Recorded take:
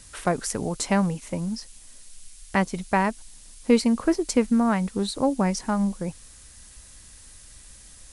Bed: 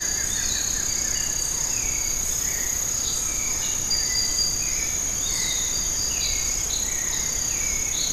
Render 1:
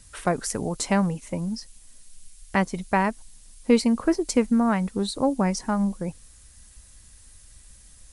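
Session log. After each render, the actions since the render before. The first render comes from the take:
broadband denoise 6 dB, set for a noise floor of −48 dBFS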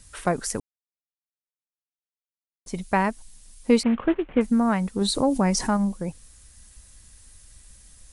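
0:00.60–0:02.66: silence
0:03.83–0:04.41: variable-slope delta modulation 16 kbit/s
0:05.01–0:05.77: envelope flattener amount 50%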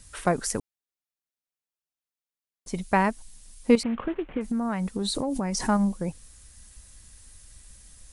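0:03.75–0:05.69: downward compressor, threshold −24 dBFS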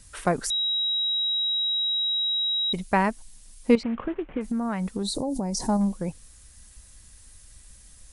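0:00.50–0:02.73: beep over 3,840 Hz −22.5 dBFS
0:03.75–0:04.37: high-frequency loss of the air 160 metres
0:05.03–0:05.81: flat-topped bell 1,900 Hz −12.5 dB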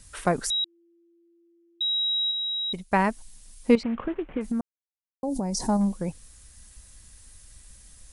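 0:00.64–0:01.81: voice inversion scrambler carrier 3,500 Hz
0:02.31–0:02.99: expander for the loud parts, over −42 dBFS
0:04.61–0:05.23: silence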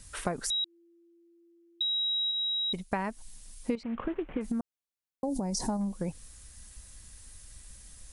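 downward compressor 8 to 1, threshold −28 dBFS, peak gain reduction 15 dB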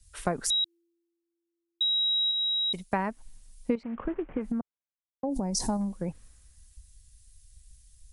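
multiband upward and downward expander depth 70%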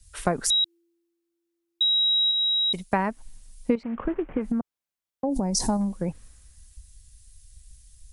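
level +4.5 dB

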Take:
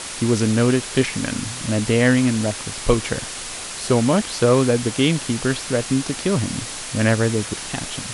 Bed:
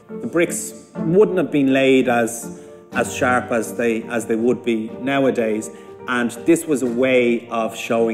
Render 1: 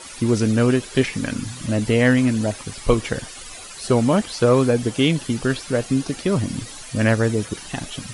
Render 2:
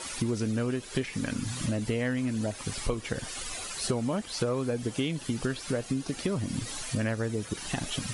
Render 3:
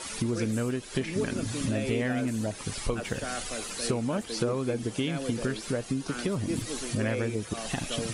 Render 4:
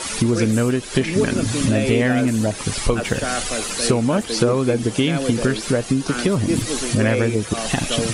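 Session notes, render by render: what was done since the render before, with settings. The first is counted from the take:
broadband denoise 13 dB, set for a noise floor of −32 dBFS
downward compressor 6 to 1, threshold −27 dBFS, peak gain reduction 15.5 dB
mix in bed −19 dB
level +11 dB

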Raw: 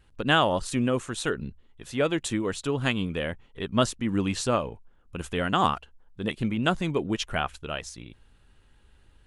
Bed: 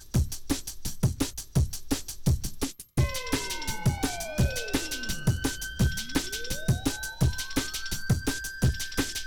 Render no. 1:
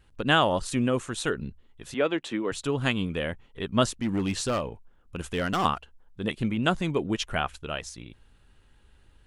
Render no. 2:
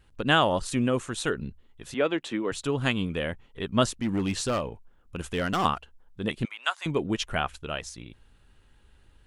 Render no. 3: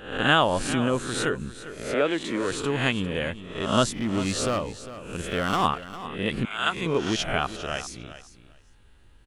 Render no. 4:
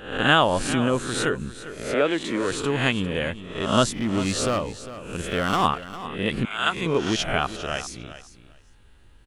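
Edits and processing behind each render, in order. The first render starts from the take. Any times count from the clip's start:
0:01.94–0:02.52: three-way crossover with the lows and the highs turned down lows −21 dB, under 190 Hz, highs −16 dB, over 4,300 Hz; 0:04.01–0:05.65: gain into a clipping stage and back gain 22 dB
0:06.45–0:06.86: high-pass filter 880 Hz 24 dB per octave
peak hold with a rise ahead of every peak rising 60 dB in 0.60 s; repeating echo 402 ms, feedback 16%, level −14 dB
level +2 dB

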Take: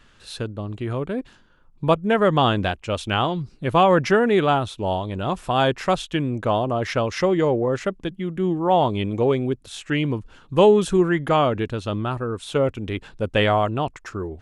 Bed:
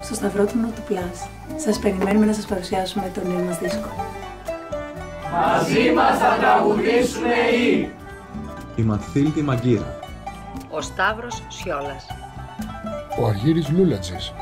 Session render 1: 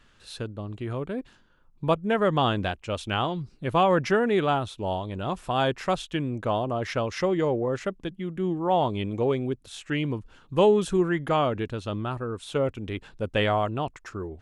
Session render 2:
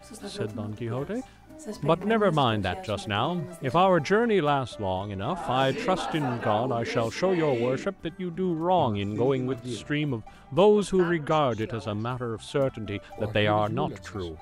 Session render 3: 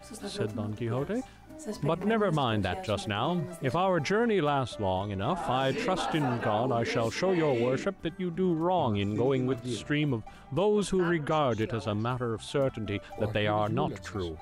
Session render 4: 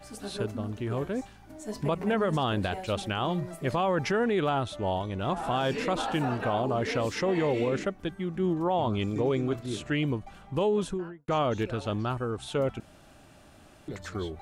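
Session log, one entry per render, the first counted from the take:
level −5 dB
mix in bed −16.5 dB
brickwall limiter −18.5 dBFS, peak gain reduction 9 dB
0:10.68–0:11.28: fade out and dull; 0:12.80–0:13.88: fill with room tone

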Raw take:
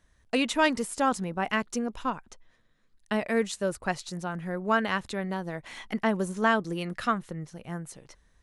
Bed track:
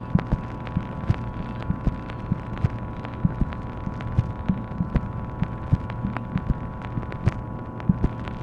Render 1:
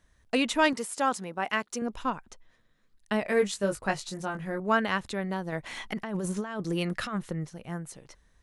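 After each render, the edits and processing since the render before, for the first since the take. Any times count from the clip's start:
0:00.73–0:01.82: high-pass filter 400 Hz 6 dB per octave
0:03.23–0:04.60: double-tracking delay 20 ms −5 dB
0:05.52–0:07.49: compressor whose output falls as the input rises −31 dBFS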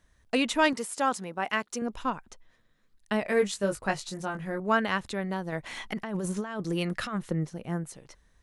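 0:07.31–0:07.84: parametric band 300 Hz +6 dB 2.4 octaves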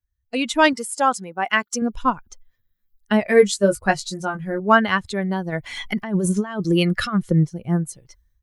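spectral dynamics exaggerated over time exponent 1.5
automatic gain control gain up to 14 dB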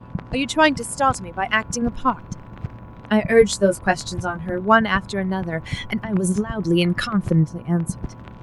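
mix in bed track −7.5 dB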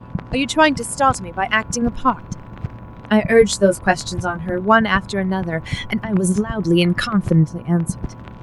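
level +3 dB
brickwall limiter −2 dBFS, peak gain reduction 3 dB

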